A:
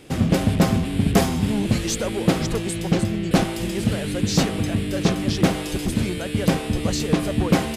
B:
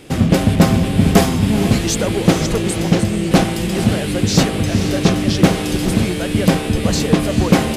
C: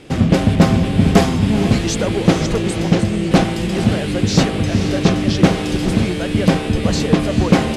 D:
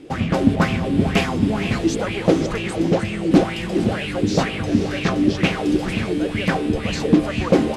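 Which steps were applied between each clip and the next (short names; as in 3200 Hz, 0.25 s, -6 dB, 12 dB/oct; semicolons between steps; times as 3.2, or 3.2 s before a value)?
diffused feedback echo 0.469 s, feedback 42%, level -9 dB; gain +5.5 dB
air absorption 51 m
LFO bell 2.1 Hz 270–2700 Hz +15 dB; gain -8 dB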